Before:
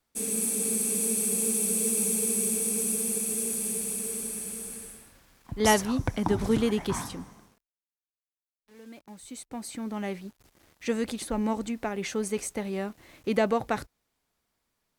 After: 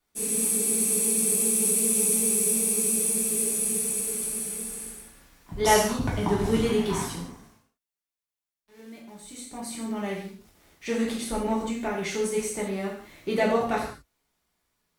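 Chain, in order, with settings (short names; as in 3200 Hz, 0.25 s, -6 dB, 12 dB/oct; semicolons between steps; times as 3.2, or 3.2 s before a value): non-linear reverb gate 0.21 s falling, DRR -5 dB; gain -3.5 dB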